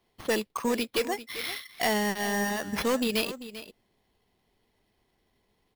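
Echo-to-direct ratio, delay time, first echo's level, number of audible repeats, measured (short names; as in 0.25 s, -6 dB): -14.0 dB, 0.393 s, -14.0 dB, 1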